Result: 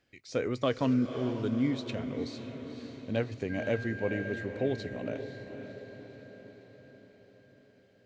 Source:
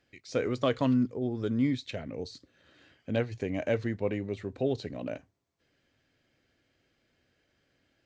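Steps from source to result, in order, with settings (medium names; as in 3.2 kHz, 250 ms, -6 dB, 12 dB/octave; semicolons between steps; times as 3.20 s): 3.49–4.43 s: whistle 1.6 kHz -39 dBFS; echo that smears into a reverb 525 ms, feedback 58%, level -9 dB; trim -1.5 dB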